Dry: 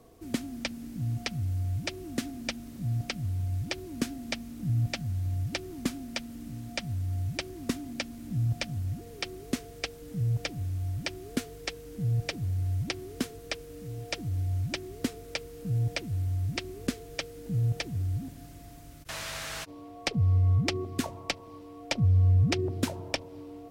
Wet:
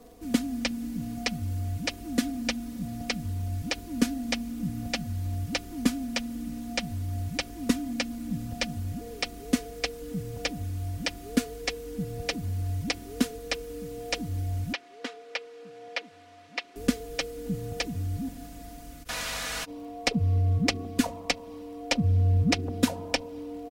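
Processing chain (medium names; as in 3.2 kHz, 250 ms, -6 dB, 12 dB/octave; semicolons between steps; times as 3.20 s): comb 4.1 ms, depth 90%; crackle 42 per s -50 dBFS; 14.73–16.76 s: band-pass 660–3500 Hz; trim +2 dB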